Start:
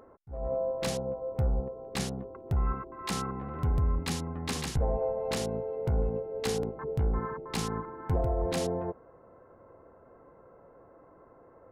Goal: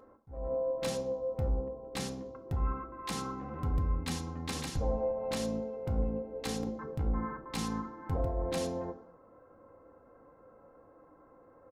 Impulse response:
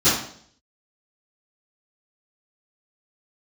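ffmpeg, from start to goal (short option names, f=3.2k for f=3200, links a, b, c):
-filter_complex "[0:a]aecho=1:1:3.8:0.42,asplit=2[a][b];[1:a]atrim=start_sample=2205[c];[b][c]afir=irnorm=-1:irlink=0,volume=-27.5dB[d];[a][d]amix=inputs=2:normalize=0,volume=-5dB"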